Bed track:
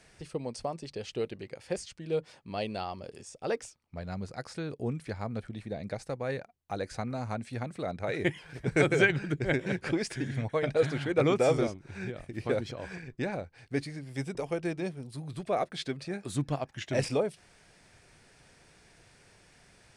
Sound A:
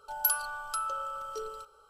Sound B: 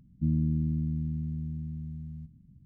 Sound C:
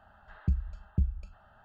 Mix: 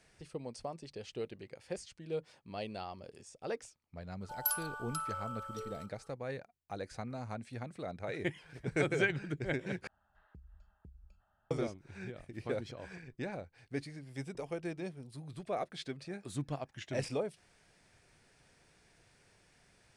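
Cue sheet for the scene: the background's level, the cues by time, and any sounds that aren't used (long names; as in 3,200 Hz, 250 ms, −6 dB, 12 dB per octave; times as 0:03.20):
bed track −7 dB
0:04.21: mix in A −6 dB
0:09.87: overwrite with C −16.5 dB + downward compressor, threshold −35 dBFS
not used: B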